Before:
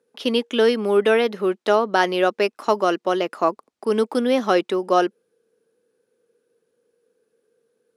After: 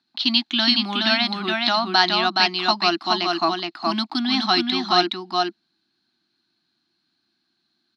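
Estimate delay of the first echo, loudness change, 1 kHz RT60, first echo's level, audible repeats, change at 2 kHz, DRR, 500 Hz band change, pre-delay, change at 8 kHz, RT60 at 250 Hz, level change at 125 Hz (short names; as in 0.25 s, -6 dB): 0.42 s, +0.5 dB, none, -3.0 dB, 1, +3.0 dB, none, -9.5 dB, none, -0.5 dB, none, +1.0 dB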